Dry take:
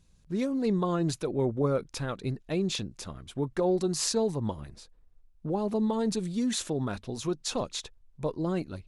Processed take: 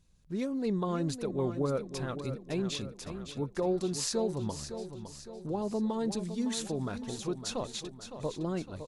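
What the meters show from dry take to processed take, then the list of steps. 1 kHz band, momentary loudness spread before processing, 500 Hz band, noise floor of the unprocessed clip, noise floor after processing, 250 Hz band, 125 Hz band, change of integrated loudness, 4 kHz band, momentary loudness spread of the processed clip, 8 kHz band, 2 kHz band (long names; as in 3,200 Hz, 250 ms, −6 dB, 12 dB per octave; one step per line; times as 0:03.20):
−3.5 dB, 9 LU, −3.5 dB, −61 dBFS, −51 dBFS, −3.5 dB, −3.5 dB, −4.0 dB, −3.5 dB, 9 LU, −3.5 dB, −3.5 dB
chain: repeating echo 560 ms, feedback 50%, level −10 dB
level −4 dB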